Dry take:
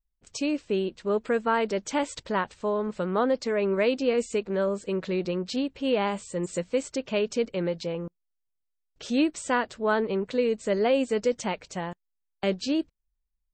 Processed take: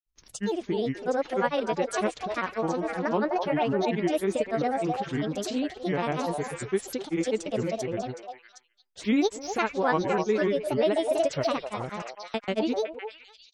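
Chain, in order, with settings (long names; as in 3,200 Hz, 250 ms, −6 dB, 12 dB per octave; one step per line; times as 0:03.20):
granular cloud, pitch spread up and down by 7 semitones
echo through a band-pass that steps 255 ms, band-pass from 720 Hz, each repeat 1.4 octaves, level −1.5 dB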